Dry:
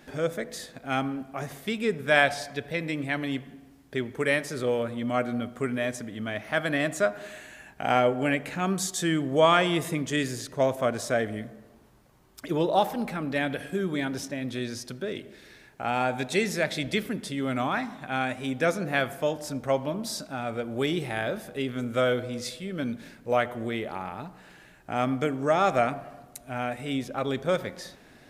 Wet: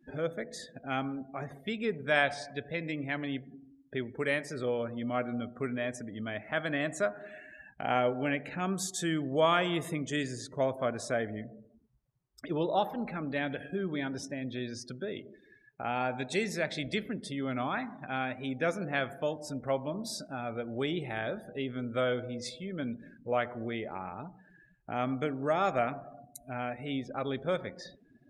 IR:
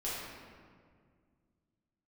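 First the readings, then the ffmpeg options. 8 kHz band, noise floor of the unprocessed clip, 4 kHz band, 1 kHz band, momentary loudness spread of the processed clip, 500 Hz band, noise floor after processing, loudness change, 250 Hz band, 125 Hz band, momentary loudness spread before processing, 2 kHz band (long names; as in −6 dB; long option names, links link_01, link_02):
−6.0 dB, −54 dBFS, −6.0 dB, −5.5 dB, 11 LU, −5.5 dB, −63 dBFS, −5.5 dB, −5.0 dB, −5.0 dB, 12 LU, −5.5 dB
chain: -filter_complex "[0:a]afftdn=noise_reduction=29:noise_floor=-44,asplit=2[link_01][link_02];[link_02]acompressor=threshold=-40dB:ratio=6,volume=-2dB[link_03];[link_01][link_03]amix=inputs=2:normalize=0,volume=-6.5dB"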